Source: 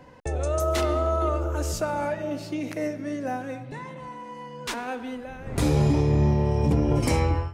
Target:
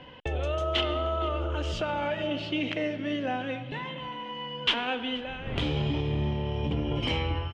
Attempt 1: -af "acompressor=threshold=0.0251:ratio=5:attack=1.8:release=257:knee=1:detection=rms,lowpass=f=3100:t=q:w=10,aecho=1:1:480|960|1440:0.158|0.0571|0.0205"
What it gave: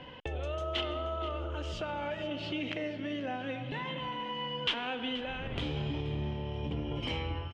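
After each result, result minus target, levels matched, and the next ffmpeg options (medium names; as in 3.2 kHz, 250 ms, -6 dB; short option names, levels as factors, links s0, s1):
compression: peak gain reduction +6.5 dB; echo-to-direct +6.5 dB
-af "acompressor=threshold=0.0631:ratio=5:attack=1.8:release=257:knee=1:detection=rms,lowpass=f=3100:t=q:w=10,aecho=1:1:480|960|1440:0.158|0.0571|0.0205"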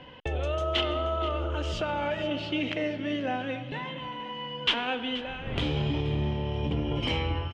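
echo-to-direct +6.5 dB
-af "acompressor=threshold=0.0631:ratio=5:attack=1.8:release=257:knee=1:detection=rms,lowpass=f=3100:t=q:w=10,aecho=1:1:480|960:0.075|0.027"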